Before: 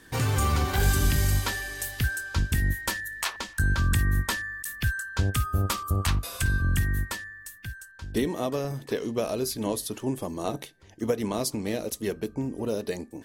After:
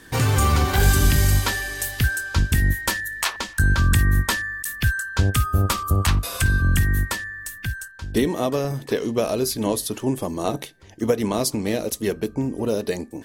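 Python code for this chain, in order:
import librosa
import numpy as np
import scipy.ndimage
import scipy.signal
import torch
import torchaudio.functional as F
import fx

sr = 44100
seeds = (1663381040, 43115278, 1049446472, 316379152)

y = fx.band_squash(x, sr, depth_pct=40, at=(5.69, 7.88))
y = F.gain(torch.from_numpy(y), 6.0).numpy()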